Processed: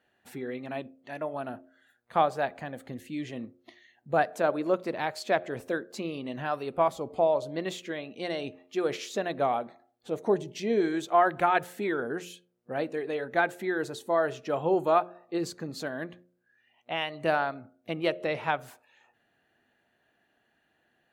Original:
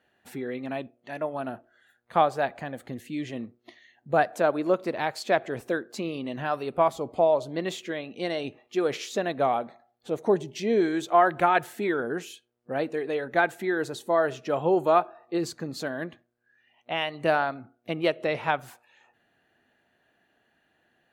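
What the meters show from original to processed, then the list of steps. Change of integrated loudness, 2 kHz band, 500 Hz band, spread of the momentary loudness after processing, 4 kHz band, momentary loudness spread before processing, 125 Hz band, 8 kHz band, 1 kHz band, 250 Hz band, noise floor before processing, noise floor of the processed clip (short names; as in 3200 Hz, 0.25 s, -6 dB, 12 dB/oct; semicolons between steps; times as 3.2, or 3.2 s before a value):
-2.5 dB, -2.5 dB, -2.5 dB, 12 LU, -2.5 dB, 12 LU, -3.0 dB, -2.5 dB, -2.5 dB, -3.0 dB, -71 dBFS, -73 dBFS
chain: de-hum 88.58 Hz, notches 7; gain -2.5 dB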